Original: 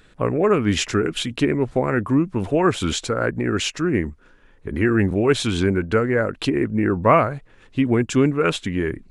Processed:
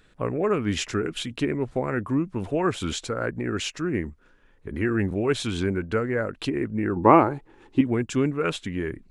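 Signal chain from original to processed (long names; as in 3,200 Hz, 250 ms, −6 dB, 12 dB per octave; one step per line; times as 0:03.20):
0:06.96–0:07.81: hollow resonant body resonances 340/840 Hz, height 16 dB, ringing for 30 ms
level −6 dB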